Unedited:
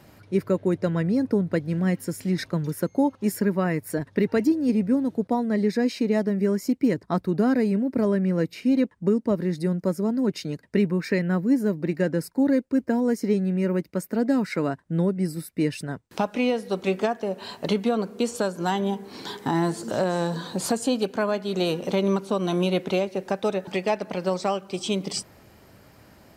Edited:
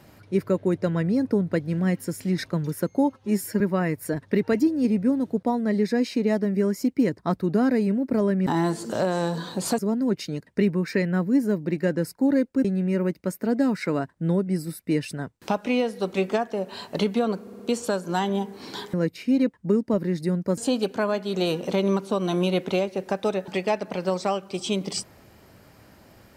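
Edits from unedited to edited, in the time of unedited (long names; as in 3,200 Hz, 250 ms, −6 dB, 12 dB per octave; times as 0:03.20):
0:03.14–0:03.45: time-stretch 1.5×
0:08.31–0:09.95: swap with 0:19.45–0:20.77
0:12.81–0:13.34: remove
0:18.11: stutter 0.06 s, 4 plays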